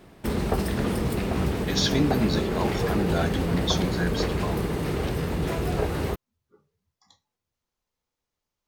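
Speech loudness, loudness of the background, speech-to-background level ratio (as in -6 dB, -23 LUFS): -28.5 LUFS, -27.0 LUFS, -1.5 dB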